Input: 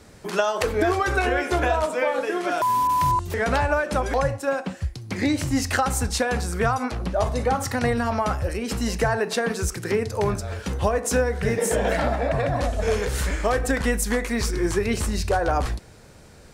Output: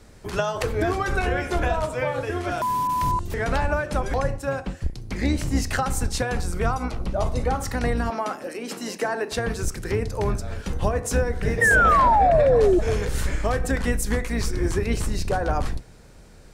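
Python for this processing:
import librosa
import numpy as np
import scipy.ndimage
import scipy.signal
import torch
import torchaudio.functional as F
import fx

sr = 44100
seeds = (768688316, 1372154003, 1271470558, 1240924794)

y = fx.octave_divider(x, sr, octaves=2, level_db=3.0)
y = fx.notch(y, sr, hz=1700.0, q=7.1, at=(6.5, 7.42))
y = fx.highpass(y, sr, hz=230.0, slope=24, at=(8.1, 9.32))
y = fx.spec_paint(y, sr, seeds[0], shape='fall', start_s=11.61, length_s=1.18, low_hz=340.0, high_hz=1900.0, level_db=-14.0)
y = y * 10.0 ** (-3.0 / 20.0)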